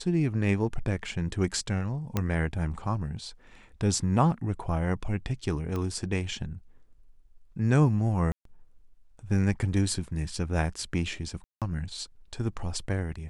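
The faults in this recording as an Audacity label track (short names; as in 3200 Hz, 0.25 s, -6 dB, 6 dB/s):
2.170000	2.170000	pop -13 dBFS
5.760000	5.760000	pop -21 dBFS
8.320000	8.450000	gap 0.133 s
11.440000	11.620000	gap 0.177 s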